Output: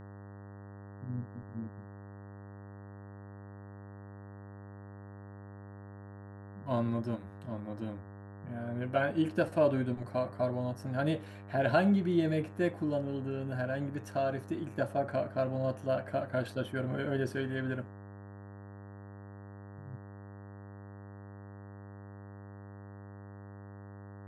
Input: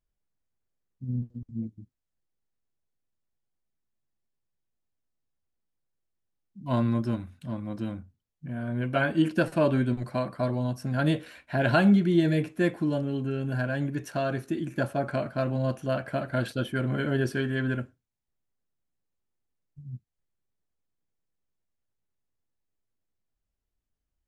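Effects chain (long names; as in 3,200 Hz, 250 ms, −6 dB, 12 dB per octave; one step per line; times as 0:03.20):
parametric band 610 Hz +6.5 dB 1.2 octaves
hum with harmonics 100 Hz, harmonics 19, −40 dBFS −6 dB per octave
level −8 dB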